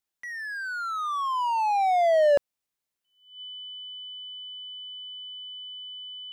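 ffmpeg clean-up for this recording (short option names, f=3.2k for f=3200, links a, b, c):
-af "bandreject=f=3k:w=30"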